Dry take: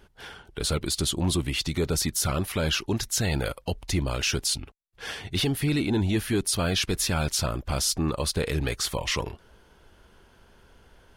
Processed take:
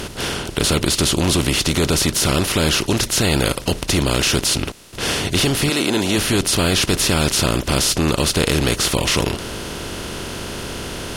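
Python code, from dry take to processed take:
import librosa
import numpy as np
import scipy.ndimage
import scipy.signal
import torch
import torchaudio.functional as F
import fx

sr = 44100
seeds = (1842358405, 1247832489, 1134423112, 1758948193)

y = fx.bin_compress(x, sr, power=0.4)
y = fx.highpass(y, sr, hz=fx.line((5.69, 320.0), (6.17, 120.0)), slope=12, at=(5.69, 6.17), fade=0.02)
y = F.gain(torch.from_numpy(y), 3.0).numpy()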